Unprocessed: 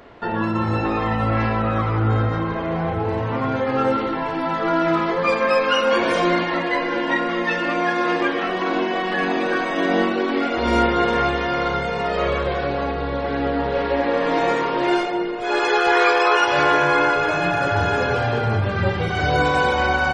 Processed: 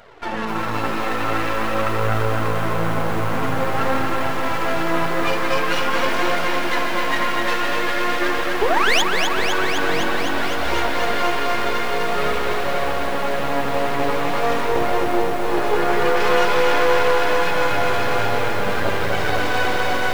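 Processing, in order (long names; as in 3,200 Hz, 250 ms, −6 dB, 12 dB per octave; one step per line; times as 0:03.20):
0:14.68–0:16.16: tilt shelving filter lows +8.5 dB, about 840 Hz
on a send: delay with a low-pass on its return 84 ms, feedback 63%, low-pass 2,600 Hz, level −7 dB
0:08.61–0:09.02: on the sum: sound drawn into the spectrogram rise 380–3,600 Hz −12 dBFS
half-wave rectification
low-shelf EQ 270 Hz −6.5 dB
in parallel at +1 dB: speech leveller within 4 dB 0.5 s
on the sum: flanger 0.47 Hz, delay 1.3 ms, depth 7.7 ms, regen −11%
feedback echo at a low word length 254 ms, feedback 80%, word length 6 bits, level −5 dB
level −2.5 dB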